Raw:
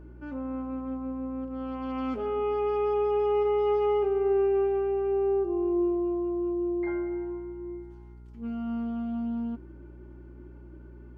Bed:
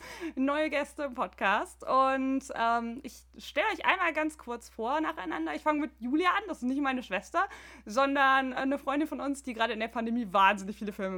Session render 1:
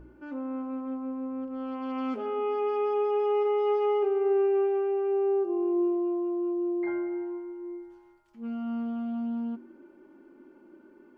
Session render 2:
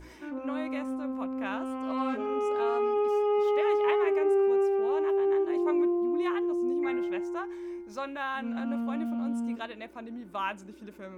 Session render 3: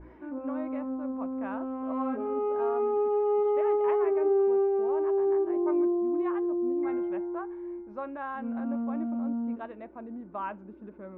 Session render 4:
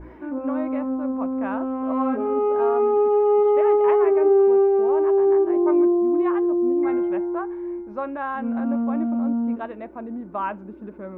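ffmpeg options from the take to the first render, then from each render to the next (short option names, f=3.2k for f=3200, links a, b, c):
-af "bandreject=f=60:t=h:w=4,bandreject=f=120:t=h:w=4,bandreject=f=180:t=h:w=4,bandreject=f=240:t=h:w=4,bandreject=f=300:t=h:w=4,bandreject=f=360:t=h:w=4,bandreject=f=420:t=h:w=4"
-filter_complex "[1:a]volume=-9.5dB[a];[0:a][a]amix=inputs=2:normalize=0"
-af "lowpass=1.2k,aemphasis=mode=reproduction:type=50fm"
-af "volume=8dB"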